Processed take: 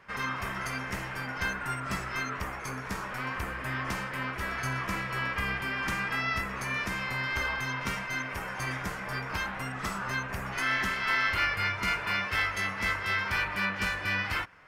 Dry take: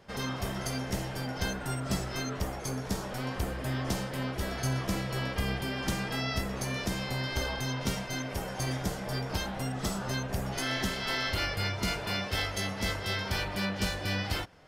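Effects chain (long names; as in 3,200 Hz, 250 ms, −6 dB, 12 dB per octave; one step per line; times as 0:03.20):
flat-topped bell 1,600 Hz +12.5 dB
level −5 dB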